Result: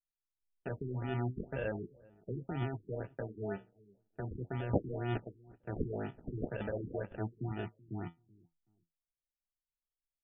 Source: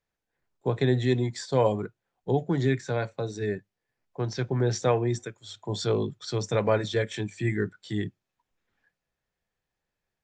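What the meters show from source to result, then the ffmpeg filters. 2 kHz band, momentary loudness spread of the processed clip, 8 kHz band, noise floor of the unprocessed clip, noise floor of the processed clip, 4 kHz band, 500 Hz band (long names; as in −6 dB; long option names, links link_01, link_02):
−11.0 dB, 9 LU, below −35 dB, below −85 dBFS, below −85 dBFS, −21.0 dB, −13.0 dB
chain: -filter_complex "[0:a]anlmdn=6.31,highshelf=frequency=4100:gain=-2.5,alimiter=limit=-22dB:level=0:latency=1:release=12,aexciter=amount=9.4:drive=4.9:freq=5000,flanger=delay=7.3:depth=9.1:regen=65:speed=0.4:shape=triangular,acrusher=samples=41:mix=1:aa=0.000001,asplit=2[link_01][link_02];[link_02]adelay=379,lowpass=frequency=830:poles=1,volume=-23dB,asplit=2[link_03][link_04];[link_04]adelay=379,lowpass=frequency=830:poles=1,volume=0.24[link_05];[link_01][link_03][link_05]amix=inputs=3:normalize=0,afftfilt=real='re*lt(b*sr/1024,420*pow(3600/420,0.5+0.5*sin(2*PI*2*pts/sr)))':imag='im*lt(b*sr/1024,420*pow(3600/420,0.5+0.5*sin(2*PI*2*pts/sr)))':win_size=1024:overlap=0.75,volume=-3.5dB"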